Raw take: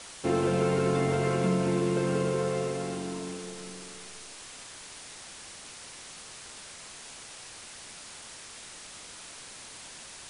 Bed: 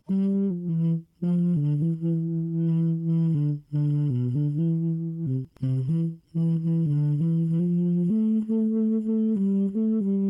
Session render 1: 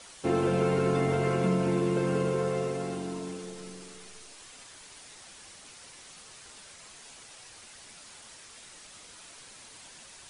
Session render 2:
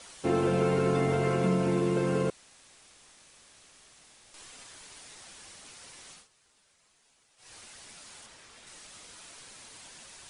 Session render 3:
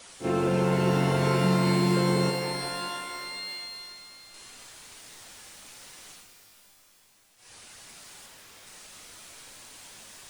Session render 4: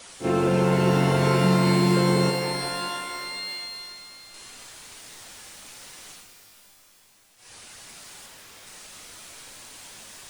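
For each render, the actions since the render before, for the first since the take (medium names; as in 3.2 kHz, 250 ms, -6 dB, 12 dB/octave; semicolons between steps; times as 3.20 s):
noise reduction 6 dB, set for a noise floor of -46 dBFS
2.30–4.34 s: room tone; 6.12–7.53 s: dip -17.5 dB, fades 0.16 s; 8.26–8.67 s: treble shelf 5 kHz -8.5 dB
on a send: reverse echo 38 ms -11.5 dB; on the sum: pitch-shifted reverb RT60 2.7 s, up +12 st, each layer -2 dB, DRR 6 dB
trim +3.5 dB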